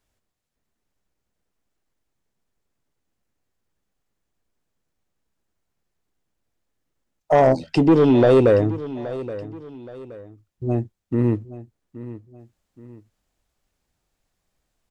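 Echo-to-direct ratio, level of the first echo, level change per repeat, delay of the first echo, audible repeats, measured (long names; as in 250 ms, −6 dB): −15.0 dB, −15.5 dB, −8.5 dB, 823 ms, 2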